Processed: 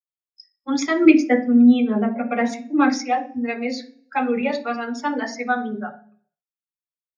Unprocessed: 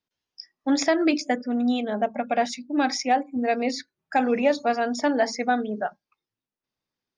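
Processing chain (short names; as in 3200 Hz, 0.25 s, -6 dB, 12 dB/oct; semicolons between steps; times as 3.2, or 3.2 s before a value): per-bin expansion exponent 1.5; 1.05–2.93 graphic EQ 125/250/500/2000/4000/8000 Hz +9/+5/+7/+6/-9/+5 dB; reverb RT60 0.45 s, pre-delay 3 ms, DRR 2.5 dB; gain -2.5 dB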